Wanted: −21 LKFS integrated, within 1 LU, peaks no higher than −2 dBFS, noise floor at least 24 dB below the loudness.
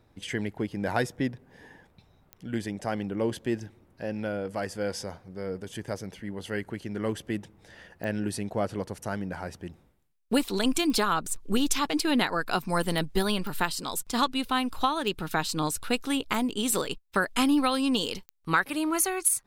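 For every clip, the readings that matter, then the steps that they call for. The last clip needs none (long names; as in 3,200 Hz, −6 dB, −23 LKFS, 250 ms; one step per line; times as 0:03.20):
number of clicks 8; integrated loudness −29.0 LKFS; sample peak −10.5 dBFS; target loudness −21.0 LKFS
→ click removal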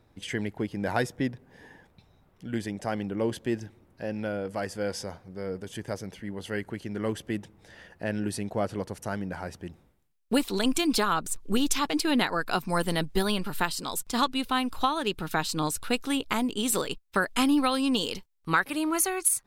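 number of clicks 0; integrated loudness −29.0 LKFS; sample peak −10.5 dBFS; target loudness −21.0 LKFS
→ level +8 dB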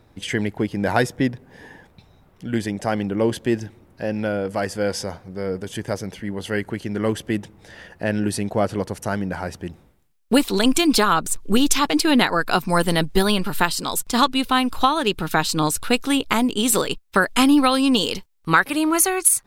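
integrated loudness −21.0 LKFS; sample peak −2.5 dBFS; background noise floor −56 dBFS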